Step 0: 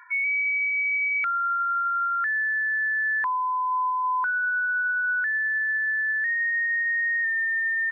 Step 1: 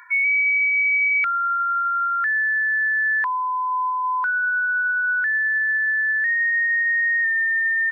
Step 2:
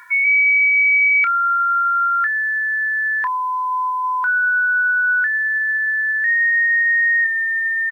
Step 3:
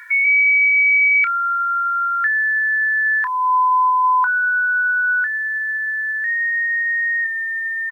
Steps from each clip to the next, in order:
high-shelf EQ 2,100 Hz +10.5 dB
bit reduction 10 bits; double-tracking delay 29 ms −12 dB; level +3 dB
dynamic equaliser 2,100 Hz, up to −5 dB, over −27 dBFS, Q 1.2; high-pass filter sweep 1,800 Hz → 850 Hz, 0:03.05–0:03.70; level −1 dB

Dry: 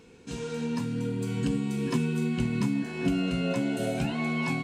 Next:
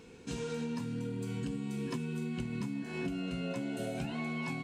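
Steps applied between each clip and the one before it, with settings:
downward compressor 6 to 1, threshold −34 dBFS, peak gain reduction 12 dB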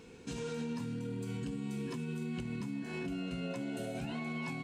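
brickwall limiter −30.5 dBFS, peak gain reduction 6 dB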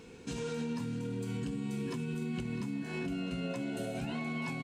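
single-tap delay 651 ms −16.5 dB
level +2 dB

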